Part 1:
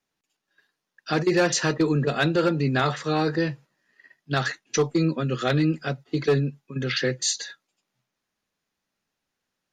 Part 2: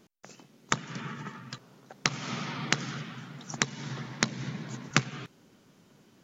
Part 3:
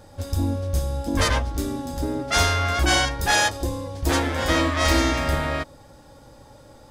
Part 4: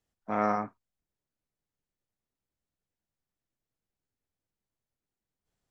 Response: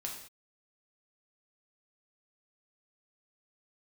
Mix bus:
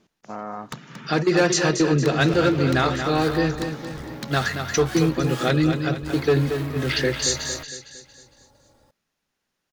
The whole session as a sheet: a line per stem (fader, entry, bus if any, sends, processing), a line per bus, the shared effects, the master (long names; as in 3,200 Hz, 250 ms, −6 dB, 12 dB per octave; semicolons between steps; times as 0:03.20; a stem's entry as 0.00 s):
+2.0 dB, 0.00 s, no send, echo send −7.5 dB, no processing
−2.0 dB, 0.00 s, no send, echo send −11 dB, low-pass filter 6,700 Hz; hard clipping −23.5 dBFS, distortion −5 dB
−6.0 dB, 2.00 s, no send, no echo send, decimation without filtering 3×; tube saturation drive 28 dB, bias 0.8
−1.0 dB, 0.00 s, no send, no echo send, Chebyshev low-pass filter 1,400 Hz; brickwall limiter −19.5 dBFS, peak gain reduction 6.5 dB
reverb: not used
echo: repeating echo 229 ms, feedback 46%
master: no processing